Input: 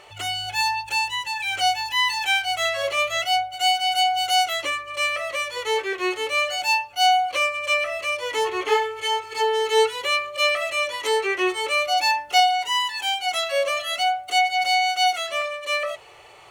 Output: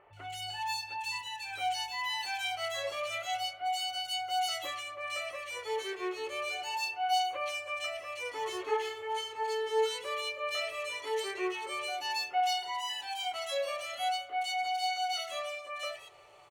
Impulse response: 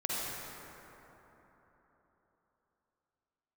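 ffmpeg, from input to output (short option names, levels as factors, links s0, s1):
-filter_complex "[0:a]acrossover=split=2100[s0][s1];[s1]adelay=130[s2];[s0][s2]amix=inputs=2:normalize=0,flanger=delay=7.4:depth=6.2:regen=-59:speed=0.25:shape=sinusoidal,asplit=2[s3][s4];[1:a]atrim=start_sample=2205,lowpass=2000,adelay=47[s5];[s4][s5]afir=irnorm=-1:irlink=0,volume=0.0708[s6];[s3][s6]amix=inputs=2:normalize=0,volume=0.447"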